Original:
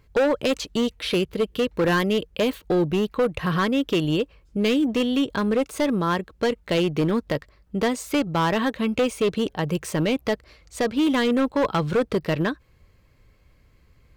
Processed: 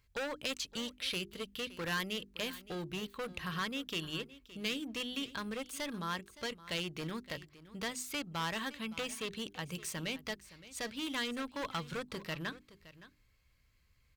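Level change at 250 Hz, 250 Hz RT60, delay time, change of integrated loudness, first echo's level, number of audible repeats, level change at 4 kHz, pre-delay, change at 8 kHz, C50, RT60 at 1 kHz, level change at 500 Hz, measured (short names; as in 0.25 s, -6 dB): -19.0 dB, none, 0.567 s, -15.5 dB, -17.0 dB, 1, -7.5 dB, none, -6.0 dB, none, none, -20.5 dB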